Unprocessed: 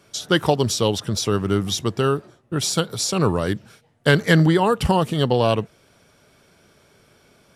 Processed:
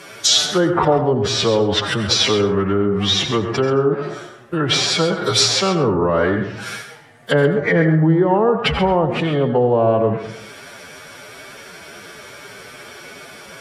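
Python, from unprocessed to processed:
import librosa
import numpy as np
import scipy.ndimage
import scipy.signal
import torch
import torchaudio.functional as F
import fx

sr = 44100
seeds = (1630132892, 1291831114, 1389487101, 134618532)

p1 = fx.peak_eq(x, sr, hz=1900.0, db=5.0, octaves=1.0)
p2 = fx.stretch_vocoder(p1, sr, factor=1.8)
p3 = fx.env_lowpass_down(p2, sr, base_hz=680.0, full_db=-15.5)
p4 = fx.over_compress(p3, sr, threshold_db=-31.0, ratio=-1.0)
p5 = p3 + F.gain(torch.from_numpy(p4), 3.0).numpy()
p6 = fx.low_shelf(p5, sr, hz=210.0, db=-12.0)
p7 = p6 + fx.echo_single(p6, sr, ms=133, db=-12.5, dry=0)
p8 = fx.rev_plate(p7, sr, seeds[0], rt60_s=0.53, hf_ratio=0.45, predelay_ms=75, drr_db=8.0)
y = F.gain(torch.from_numpy(p8), 4.5).numpy()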